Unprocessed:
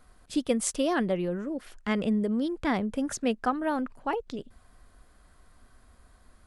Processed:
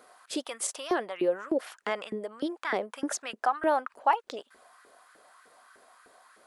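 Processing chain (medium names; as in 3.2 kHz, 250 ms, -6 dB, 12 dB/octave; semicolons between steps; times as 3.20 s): peak limiter -21 dBFS, peak gain reduction 10 dB; gain riding 0.5 s; LFO high-pass saw up 3.3 Hz 370–1600 Hz; trim +1.5 dB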